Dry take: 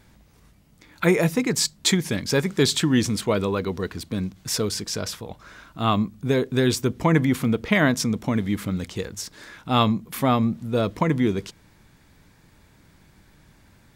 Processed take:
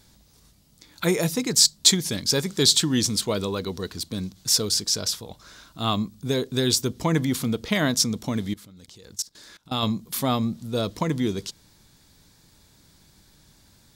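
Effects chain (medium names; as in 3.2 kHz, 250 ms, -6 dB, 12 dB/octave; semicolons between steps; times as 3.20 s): resonant high shelf 3.1 kHz +8.5 dB, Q 1.5; 8.53–9.83 s: level held to a coarse grid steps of 22 dB; trim -3.5 dB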